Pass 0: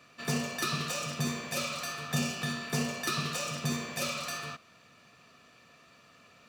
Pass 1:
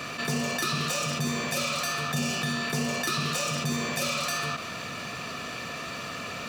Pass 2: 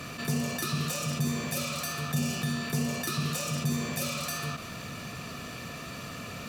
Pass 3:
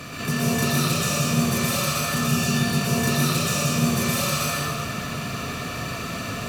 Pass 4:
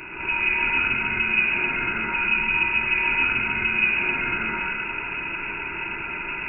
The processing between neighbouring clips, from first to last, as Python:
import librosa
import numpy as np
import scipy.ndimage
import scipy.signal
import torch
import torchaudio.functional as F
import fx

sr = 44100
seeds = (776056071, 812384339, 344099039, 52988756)

y1 = fx.env_flatten(x, sr, amount_pct=70)
y2 = fx.peak_eq(y1, sr, hz=13000.0, db=10.5, octaves=1.1)
y2 = fx.dmg_crackle(y2, sr, seeds[0], per_s=200.0, level_db=-38.0)
y2 = fx.low_shelf(y2, sr, hz=260.0, db=12.0)
y2 = F.gain(torch.from_numpy(y2), -7.0).numpy()
y3 = fx.rev_plate(y2, sr, seeds[1], rt60_s=1.7, hf_ratio=0.75, predelay_ms=105, drr_db=-6.0)
y3 = F.gain(torch.from_numpy(y3), 3.0).numpy()
y4 = fx.freq_invert(y3, sr, carrier_hz=2700)